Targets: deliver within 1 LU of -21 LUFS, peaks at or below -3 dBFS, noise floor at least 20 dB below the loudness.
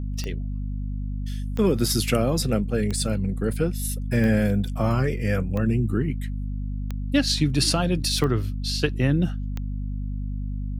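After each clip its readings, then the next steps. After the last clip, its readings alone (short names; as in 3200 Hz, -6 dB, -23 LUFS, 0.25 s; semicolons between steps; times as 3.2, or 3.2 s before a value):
clicks 8; hum 50 Hz; harmonics up to 250 Hz; hum level -26 dBFS; loudness -25.0 LUFS; peak -6.5 dBFS; loudness target -21.0 LUFS
-> de-click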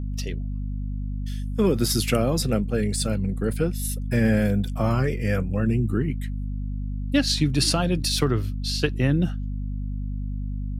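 clicks 0; hum 50 Hz; harmonics up to 250 Hz; hum level -26 dBFS
-> notches 50/100/150/200/250 Hz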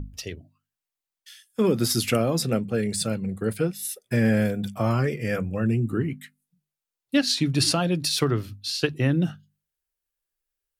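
hum none; loudness -24.5 LUFS; peak -7.5 dBFS; loudness target -21.0 LUFS
-> gain +3.5 dB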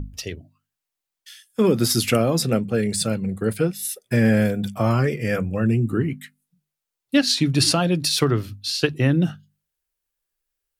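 loudness -21.0 LUFS; peak -4.0 dBFS; noise floor -85 dBFS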